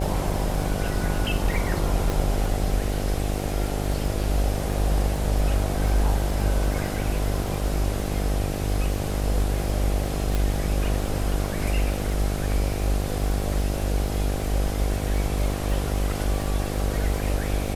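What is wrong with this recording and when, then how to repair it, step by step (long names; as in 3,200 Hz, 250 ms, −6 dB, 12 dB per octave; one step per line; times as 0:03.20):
mains buzz 50 Hz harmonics 16 −28 dBFS
surface crackle 56 per second −31 dBFS
0:02.10: click
0:10.35: click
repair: click removal
hum removal 50 Hz, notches 16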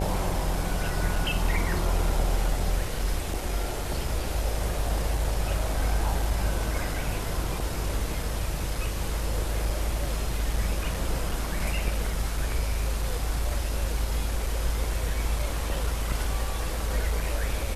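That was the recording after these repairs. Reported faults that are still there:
0:10.35: click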